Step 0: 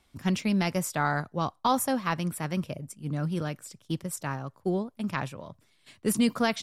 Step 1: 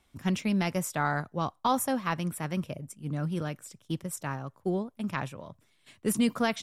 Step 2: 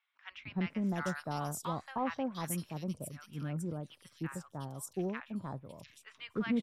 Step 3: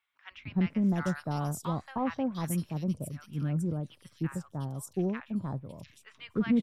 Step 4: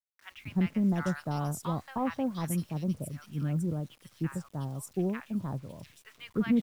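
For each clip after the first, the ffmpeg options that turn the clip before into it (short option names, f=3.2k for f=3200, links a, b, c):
-af "equalizer=f=4.6k:w=4.4:g=-5,volume=-1.5dB"
-filter_complex "[0:a]acrossover=split=1100|3400[a][b][c];[a]adelay=310[d];[c]adelay=700[e];[d][b][e]amix=inputs=3:normalize=0,volume=-6dB"
-af "lowshelf=f=330:g=9.5"
-af "acrusher=bits=9:mix=0:aa=0.000001"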